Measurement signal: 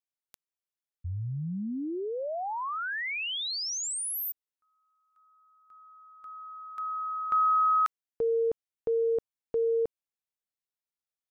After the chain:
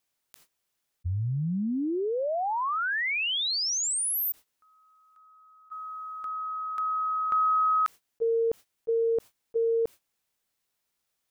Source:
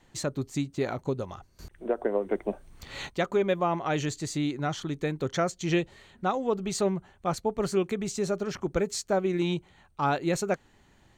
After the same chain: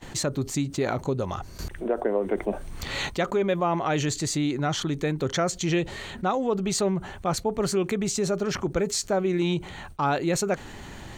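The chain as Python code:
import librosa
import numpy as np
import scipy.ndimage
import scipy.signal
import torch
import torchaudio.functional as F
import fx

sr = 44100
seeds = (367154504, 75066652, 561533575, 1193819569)

y = fx.gate_hold(x, sr, open_db=-56.0, close_db=-60.0, hold_ms=40.0, range_db=-26, attack_ms=18.0, release_ms=57.0)
y = fx.env_flatten(y, sr, amount_pct=50)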